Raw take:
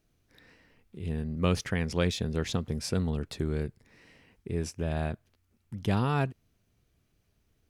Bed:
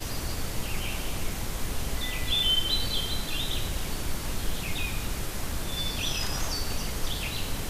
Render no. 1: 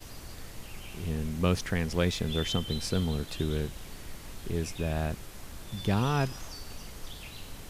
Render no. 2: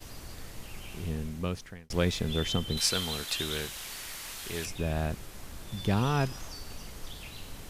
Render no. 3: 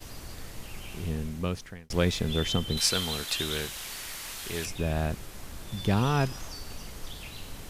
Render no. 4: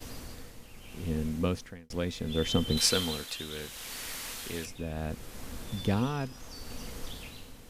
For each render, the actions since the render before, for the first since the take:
add bed -12 dB
0.98–1.90 s: fade out; 2.77–4.66 s: tilt shelf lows -10 dB, about 630 Hz
trim +2 dB
small resonant body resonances 250/480 Hz, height 9 dB, ringing for 85 ms; tremolo 0.72 Hz, depth 66%

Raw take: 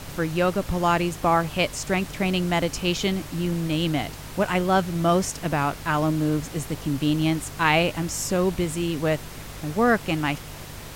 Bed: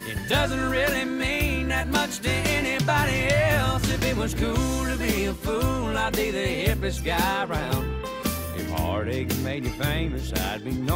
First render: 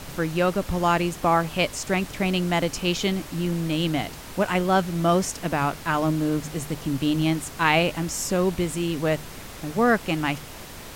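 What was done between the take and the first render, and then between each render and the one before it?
de-hum 50 Hz, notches 3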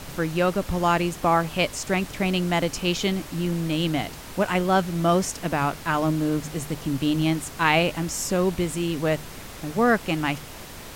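no audible change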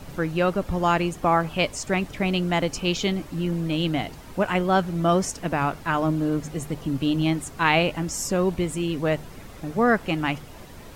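noise reduction 9 dB, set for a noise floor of -40 dBFS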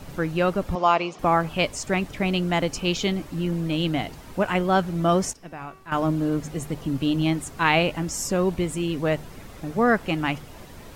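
0.75–1.19 s: cabinet simulation 290–5800 Hz, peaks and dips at 300 Hz -5 dB, 680 Hz +4 dB, 1.1 kHz +6 dB, 1.7 kHz -9 dB, 2.4 kHz +3 dB, 5.5 kHz +4 dB; 5.33–5.92 s: feedback comb 380 Hz, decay 0.72 s, mix 80%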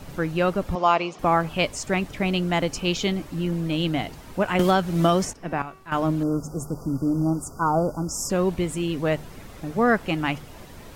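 4.59–5.62 s: three bands compressed up and down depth 100%; 6.23–8.30 s: brick-wall FIR band-stop 1.5–4.6 kHz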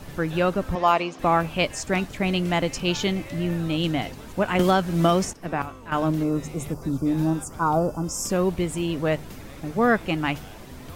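add bed -18.5 dB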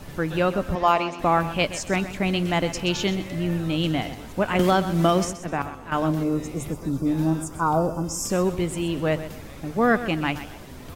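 feedback delay 127 ms, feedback 31%, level -13 dB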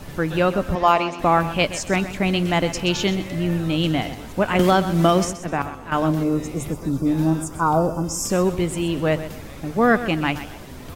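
trim +3 dB

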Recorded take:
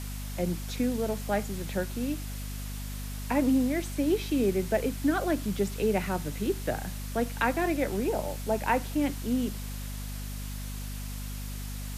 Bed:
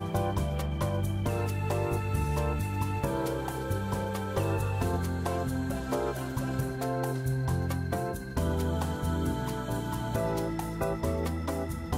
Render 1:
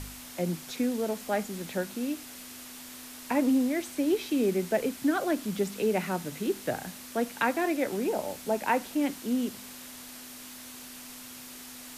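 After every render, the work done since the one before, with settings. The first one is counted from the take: de-hum 50 Hz, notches 4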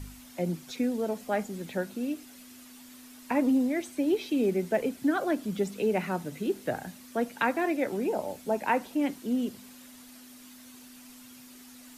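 noise reduction 9 dB, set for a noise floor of -45 dBFS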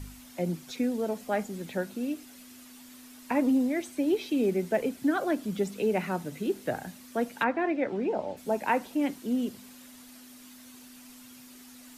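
7.43–8.36 s: low-pass 2.5 kHz -> 4.1 kHz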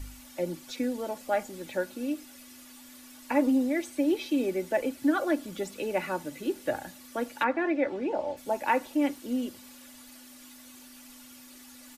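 peaking EQ 210 Hz -11.5 dB 0.43 oct; comb 3.5 ms, depth 55%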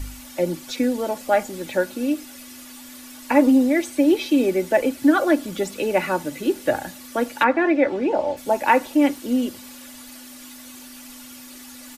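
trim +9 dB

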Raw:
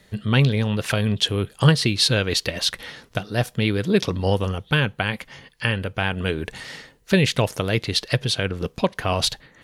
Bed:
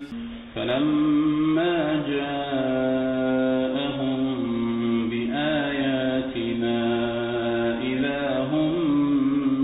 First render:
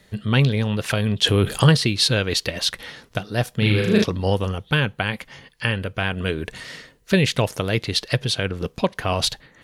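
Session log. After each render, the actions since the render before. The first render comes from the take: 1.24–1.77 s: level flattener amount 50%; 3.57–4.04 s: flutter echo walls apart 6.5 m, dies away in 0.89 s; 5.84–7.20 s: Butterworth band-stop 830 Hz, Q 7.8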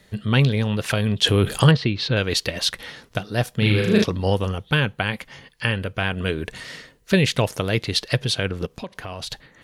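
1.71–2.17 s: distance through air 240 m; 8.65–9.31 s: compression 3:1, threshold -32 dBFS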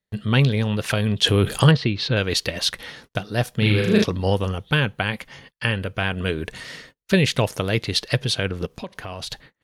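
band-stop 7.6 kHz, Q 29; gate -46 dBFS, range -32 dB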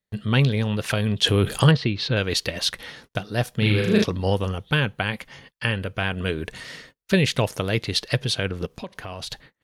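trim -1.5 dB

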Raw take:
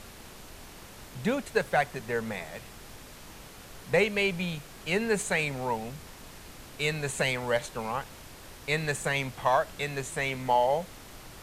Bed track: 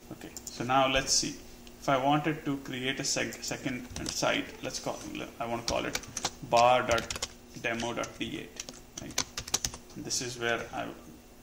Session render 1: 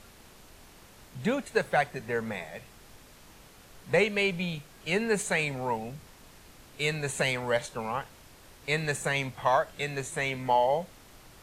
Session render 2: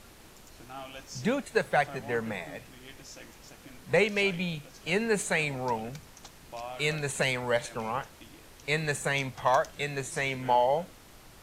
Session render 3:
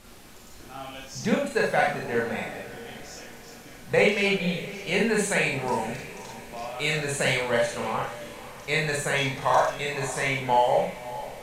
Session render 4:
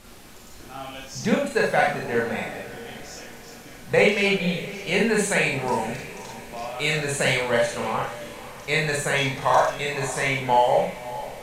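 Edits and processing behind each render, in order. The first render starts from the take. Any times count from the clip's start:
noise print and reduce 6 dB
add bed track -17.5 dB
echo that smears into a reverb 545 ms, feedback 44%, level -15 dB; Schroeder reverb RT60 0.39 s, combs from 30 ms, DRR -2 dB
trim +2.5 dB

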